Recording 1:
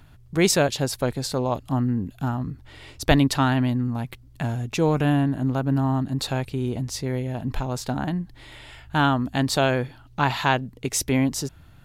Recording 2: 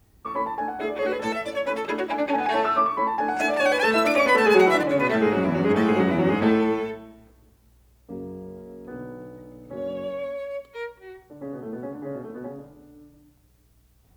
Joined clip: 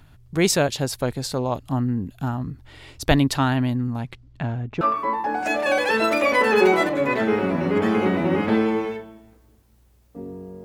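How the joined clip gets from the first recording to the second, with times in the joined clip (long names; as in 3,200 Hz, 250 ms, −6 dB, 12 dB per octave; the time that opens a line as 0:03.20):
recording 1
0:03.98–0:04.81: low-pass filter 9,100 Hz → 1,500 Hz
0:04.81: continue with recording 2 from 0:02.75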